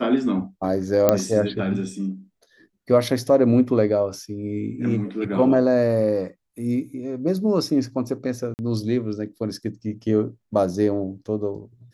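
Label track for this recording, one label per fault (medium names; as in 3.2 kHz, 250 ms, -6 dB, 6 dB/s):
1.090000	1.090000	pop -3 dBFS
8.540000	8.590000	dropout 49 ms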